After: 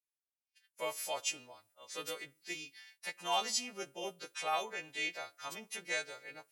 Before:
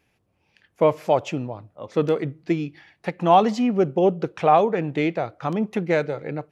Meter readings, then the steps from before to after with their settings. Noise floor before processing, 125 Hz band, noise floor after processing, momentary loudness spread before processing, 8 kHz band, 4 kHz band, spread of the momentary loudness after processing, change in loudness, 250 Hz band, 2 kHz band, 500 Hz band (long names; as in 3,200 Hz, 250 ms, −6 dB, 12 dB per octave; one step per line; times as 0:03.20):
−69 dBFS, −34.0 dB, below −85 dBFS, 13 LU, can't be measured, 0.0 dB, 12 LU, −16.5 dB, −29.5 dB, −6.5 dB, −22.5 dB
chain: every partial snapped to a pitch grid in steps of 2 semitones
downward expander −47 dBFS
first difference